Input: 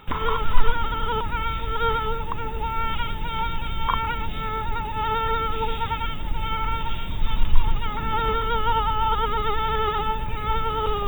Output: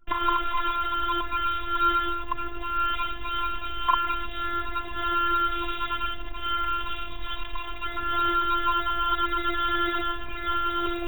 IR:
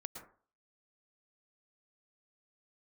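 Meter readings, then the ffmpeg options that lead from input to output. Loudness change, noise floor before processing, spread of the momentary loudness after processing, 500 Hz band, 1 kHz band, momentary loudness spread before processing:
-1.0 dB, -29 dBFS, 9 LU, -8.5 dB, -1.0 dB, 6 LU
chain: -filter_complex "[0:a]anlmdn=1.58,acrossover=split=380|3000[a][b][c];[a]acompressor=threshold=-32dB:ratio=8[d];[d][b][c]amix=inputs=3:normalize=0,afftfilt=real='hypot(re,im)*cos(PI*b)':imag='0':win_size=512:overlap=0.75,volume=4dB"

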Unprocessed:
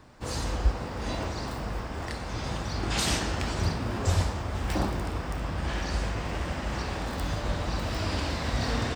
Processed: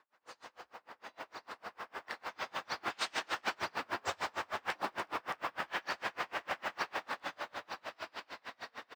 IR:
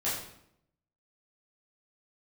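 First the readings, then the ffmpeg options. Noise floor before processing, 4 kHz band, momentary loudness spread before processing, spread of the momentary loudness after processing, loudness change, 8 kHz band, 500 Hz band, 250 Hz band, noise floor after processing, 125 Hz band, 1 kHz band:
-36 dBFS, -8.5 dB, 7 LU, 14 LU, -9.0 dB, -14.0 dB, -10.0 dB, -19.0 dB, -75 dBFS, -32.5 dB, -4.0 dB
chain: -af "lowpass=1.5k,aderivative,dynaudnorm=f=360:g=11:m=15dB,acrusher=bits=7:mode=log:mix=0:aa=0.000001,highpass=f=390:p=1,aecho=1:1:282:0.251,alimiter=level_in=7.5dB:limit=-24dB:level=0:latency=1:release=59,volume=-7.5dB,aeval=exprs='val(0)*pow(10,-34*(0.5-0.5*cos(2*PI*6.6*n/s))/20)':c=same,volume=9.5dB"

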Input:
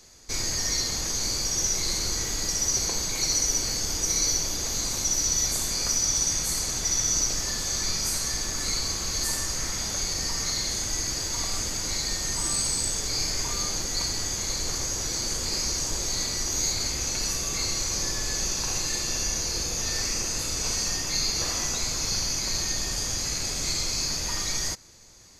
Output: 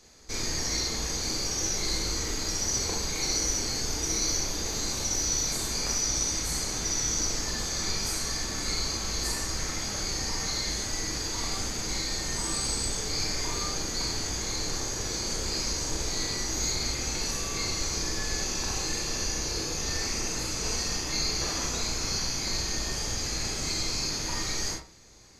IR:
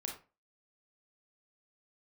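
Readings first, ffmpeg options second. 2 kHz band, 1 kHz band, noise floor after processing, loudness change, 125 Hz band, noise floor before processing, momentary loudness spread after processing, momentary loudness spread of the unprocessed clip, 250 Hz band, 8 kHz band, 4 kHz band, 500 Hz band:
0.0 dB, +0.5 dB, -33 dBFS, -3.0 dB, 0.0 dB, -31 dBFS, 4 LU, 4 LU, +1.5 dB, -4.5 dB, -2.5 dB, +1.5 dB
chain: -filter_complex "[0:a]highshelf=f=6.5k:g=-7[a];[1:a]atrim=start_sample=2205[b];[a][b]afir=irnorm=-1:irlink=0,volume=1dB"

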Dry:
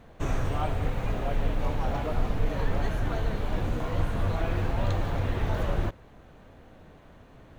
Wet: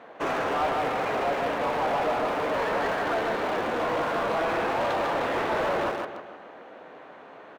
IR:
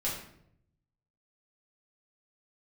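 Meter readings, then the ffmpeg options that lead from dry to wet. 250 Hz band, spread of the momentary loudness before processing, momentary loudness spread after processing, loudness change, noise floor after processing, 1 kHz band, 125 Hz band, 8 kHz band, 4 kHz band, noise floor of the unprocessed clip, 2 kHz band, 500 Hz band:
+1.0 dB, 2 LU, 20 LU, +3.5 dB, -47 dBFS, +10.0 dB, -14.5 dB, n/a, +6.5 dB, -52 dBFS, +9.5 dB, +8.0 dB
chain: -filter_complex "[0:a]highpass=300,highshelf=f=4.8k:g=-10.5,aecho=1:1:153|306|459|612|765:0.501|0.226|0.101|0.0457|0.0206,asplit=2[a][b];[b]acrusher=bits=5:mix=0:aa=0.000001,volume=-8.5dB[c];[a][c]amix=inputs=2:normalize=0,asplit=2[d][e];[e]highpass=f=720:p=1,volume=19dB,asoftclip=type=tanh:threshold=-17.5dB[f];[d][f]amix=inputs=2:normalize=0,lowpass=f=1.9k:p=1,volume=-6dB"

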